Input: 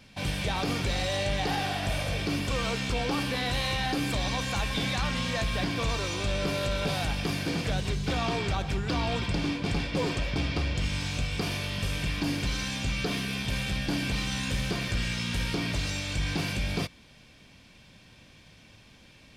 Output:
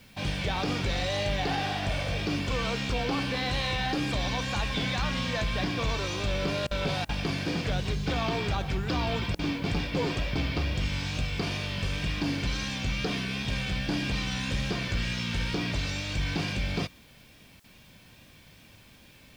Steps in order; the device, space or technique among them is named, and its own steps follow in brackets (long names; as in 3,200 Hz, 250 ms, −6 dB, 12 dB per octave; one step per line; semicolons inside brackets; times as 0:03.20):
worn cassette (low-pass filter 6,300 Hz 12 dB per octave; tape wow and flutter; tape dropouts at 0:06.67/0:07.05/0:09.35/0:17.60, 39 ms −25 dB; white noise bed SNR 34 dB)